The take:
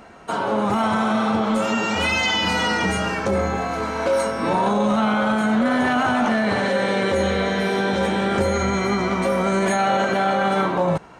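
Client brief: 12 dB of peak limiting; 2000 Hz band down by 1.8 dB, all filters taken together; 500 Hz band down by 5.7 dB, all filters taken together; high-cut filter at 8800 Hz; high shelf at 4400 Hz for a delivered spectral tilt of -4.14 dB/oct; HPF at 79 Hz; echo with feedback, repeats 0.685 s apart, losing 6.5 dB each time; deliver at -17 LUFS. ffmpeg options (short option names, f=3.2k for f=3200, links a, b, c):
-af "highpass=79,lowpass=8.8k,equalizer=f=500:t=o:g=-7,equalizer=f=2k:t=o:g=-3.5,highshelf=f=4.4k:g=8,alimiter=limit=-22dB:level=0:latency=1,aecho=1:1:685|1370|2055|2740|3425|4110:0.473|0.222|0.105|0.0491|0.0231|0.0109,volume=11.5dB"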